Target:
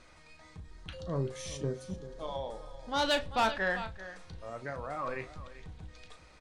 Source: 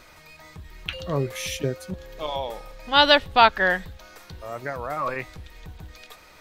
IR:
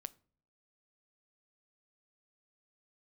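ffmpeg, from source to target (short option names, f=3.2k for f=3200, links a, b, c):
-filter_complex "[0:a]lowshelf=f=360:g=4.5[a];[1:a]atrim=start_sample=2205,asetrate=79380,aresample=44100[b];[a][b]afir=irnorm=-1:irlink=0,aresample=22050,aresample=44100,asplit=3[c][d][e];[c]afade=t=out:st=0.58:d=0.02[f];[d]equalizer=f=2.5k:w=2:g=-10.5,afade=t=in:st=0.58:d=0.02,afade=t=out:st=3.01:d=0.02[g];[e]afade=t=in:st=3.01:d=0.02[h];[f][g][h]amix=inputs=3:normalize=0,aecho=1:1:389:0.158,asoftclip=type=tanh:threshold=-21.5dB,asplit=2[i][j];[j]adelay=36,volume=-11dB[k];[i][k]amix=inputs=2:normalize=0"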